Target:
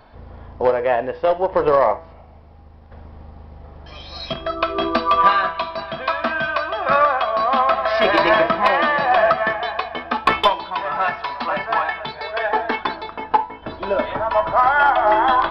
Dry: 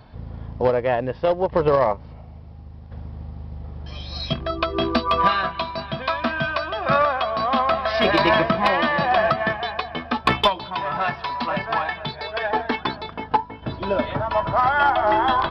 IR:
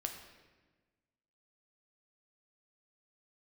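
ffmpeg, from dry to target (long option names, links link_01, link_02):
-filter_complex "[0:a]equalizer=frequency=120:width_type=o:width=2.2:gain=-14.5,bandreject=frequency=163.8:width_type=h:width=4,bandreject=frequency=327.6:width_type=h:width=4,bandreject=frequency=491.4:width_type=h:width=4,bandreject=frequency=655.2:width_type=h:width=4,bandreject=frequency=819:width_type=h:width=4,bandreject=frequency=982.8:width_type=h:width=4,bandreject=frequency=1146.6:width_type=h:width=4,bandreject=frequency=1310.4:width_type=h:width=4,bandreject=frequency=1474.2:width_type=h:width=4,bandreject=frequency=1638:width_type=h:width=4,bandreject=frequency=1801.8:width_type=h:width=4,bandreject=frequency=1965.6:width_type=h:width=4,bandreject=frequency=2129.4:width_type=h:width=4,bandreject=frequency=2293.2:width_type=h:width=4,bandreject=frequency=2457:width_type=h:width=4,bandreject=frequency=2620.8:width_type=h:width=4,bandreject=frequency=2784.6:width_type=h:width=4,bandreject=frequency=2948.4:width_type=h:width=4,bandreject=frequency=3112.2:width_type=h:width=4,bandreject=frequency=3276:width_type=h:width=4,bandreject=frequency=3439.8:width_type=h:width=4,bandreject=frequency=3603.6:width_type=h:width=4,bandreject=frequency=3767.4:width_type=h:width=4,bandreject=frequency=3931.2:width_type=h:width=4,bandreject=frequency=4095:width_type=h:width=4,bandreject=frequency=4258.8:width_type=h:width=4,bandreject=frequency=4422.6:width_type=h:width=4,bandreject=frequency=4586.4:width_type=h:width=4,bandreject=frequency=4750.2:width_type=h:width=4,bandreject=frequency=4914:width_type=h:width=4,bandreject=frequency=5077.8:width_type=h:width=4,bandreject=frequency=5241.6:width_type=h:width=4,bandreject=frequency=5405.4:width_type=h:width=4,bandreject=frequency=5569.2:width_type=h:width=4,bandreject=frequency=5733:width_type=h:width=4,bandreject=frequency=5896.8:width_type=h:width=4,asplit=2[link_01][link_02];[1:a]atrim=start_sample=2205,atrim=end_sample=3528,lowpass=2700[link_03];[link_02][link_03]afir=irnorm=-1:irlink=0,volume=-0.5dB[link_04];[link_01][link_04]amix=inputs=2:normalize=0"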